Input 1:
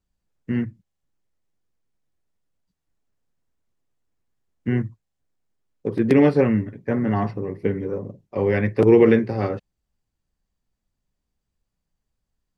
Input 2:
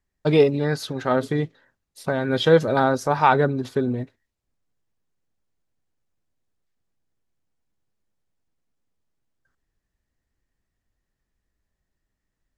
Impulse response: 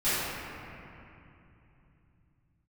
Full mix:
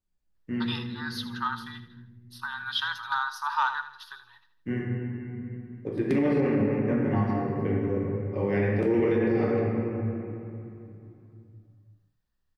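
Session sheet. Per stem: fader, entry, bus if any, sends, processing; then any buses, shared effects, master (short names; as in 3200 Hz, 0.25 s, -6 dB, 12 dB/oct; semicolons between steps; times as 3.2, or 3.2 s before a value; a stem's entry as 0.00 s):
-10.5 dB, 0.00 s, send -8.5 dB, no echo send, dry
-0.5 dB, 0.35 s, no send, echo send -13 dB, elliptic high-pass 910 Hz, stop band 40 dB; fixed phaser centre 2200 Hz, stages 6; soft clip -11 dBFS, distortion -21 dB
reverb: on, RT60 2.9 s, pre-delay 3 ms
echo: feedback echo 80 ms, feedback 43%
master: limiter -16 dBFS, peak gain reduction 7.5 dB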